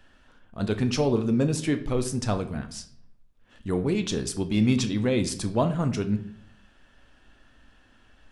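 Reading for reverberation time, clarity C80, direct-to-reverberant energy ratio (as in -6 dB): 0.60 s, 16.5 dB, 7.5 dB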